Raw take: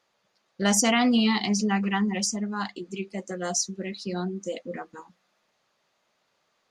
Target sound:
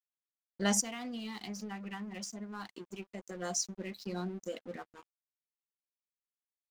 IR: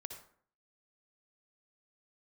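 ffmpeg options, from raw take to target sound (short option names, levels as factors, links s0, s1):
-filter_complex "[0:a]asplit=3[s0][s1][s2];[s0]afade=t=out:st=0.8:d=0.02[s3];[s1]acompressor=threshold=0.0282:ratio=6,afade=t=in:st=0.8:d=0.02,afade=t=out:st=3.34:d=0.02[s4];[s2]afade=t=in:st=3.34:d=0.02[s5];[s3][s4][s5]amix=inputs=3:normalize=0,aeval=exprs='sgn(val(0))*max(abs(val(0))-0.00531,0)':c=same,volume=0.473"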